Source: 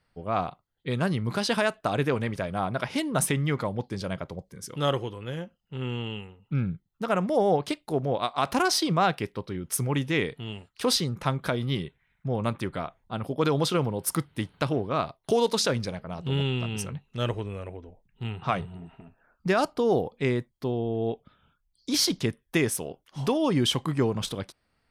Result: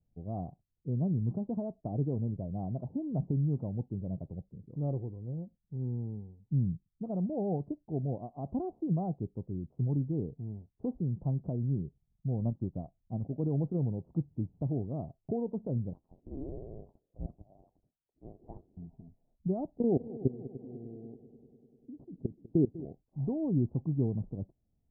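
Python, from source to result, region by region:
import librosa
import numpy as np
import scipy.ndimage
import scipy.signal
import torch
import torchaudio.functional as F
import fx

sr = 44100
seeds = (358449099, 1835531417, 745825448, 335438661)

y = fx.chain(x, sr, fx.lowpass(hz=1600.0, slope=12),
    fx.peak_eq(hz=410.0, db=-4.0, octaves=0.22),
    fx.transient(attack_db=4, sustain_db=-8), at=(12.4, 13.2))
y = fx.chain(y, sr, fx.high_shelf(hz=2300.0, db=8.5),
    fx.freq_invert(carrier_hz=3200), at=(15.93, 18.77))
y = fx.chain(y, sr, fx.level_steps(step_db=23),
    fx.peak_eq(hz=310.0, db=8.0, octaves=1.9),
    fx.echo_heads(ms=99, heads='second and third', feedback_pct=62, wet_db=-17.0), at=(19.76, 22.85))
y = scipy.signal.sosfilt(scipy.signal.butter(8, 710.0, 'lowpass', fs=sr, output='sos'), y)
y = fx.peak_eq(y, sr, hz=540.0, db=-14.0, octaves=1.5)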